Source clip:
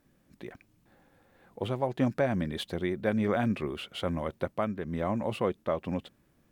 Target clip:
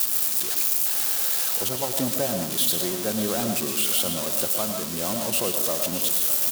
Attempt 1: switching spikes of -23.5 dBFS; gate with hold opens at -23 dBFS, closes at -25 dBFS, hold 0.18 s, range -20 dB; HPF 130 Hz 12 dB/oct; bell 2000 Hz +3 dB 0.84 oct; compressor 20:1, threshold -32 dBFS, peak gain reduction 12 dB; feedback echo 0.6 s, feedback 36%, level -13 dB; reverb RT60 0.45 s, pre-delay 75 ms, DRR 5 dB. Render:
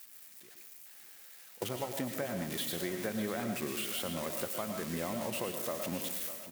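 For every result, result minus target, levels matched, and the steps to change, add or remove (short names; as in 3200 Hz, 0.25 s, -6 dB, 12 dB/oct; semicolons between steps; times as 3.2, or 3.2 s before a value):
compressor: peak gain reduction +12 dB; 2000 Hz band +7.0 dB; switching spikes: distortion -10 dB
remove: compressor 20:1, threshold -32 dBFS, peak gain reduction 12 dB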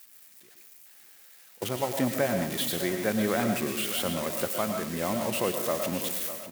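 2000 Hz band +7.0 dB; switching spikes: distortion -10 dB
change: bell 2000 Hz -7 dB 0.84 oct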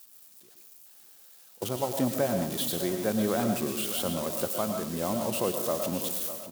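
switching spikes: distortion -10 dB
change: switching spikes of -13.5 dBFS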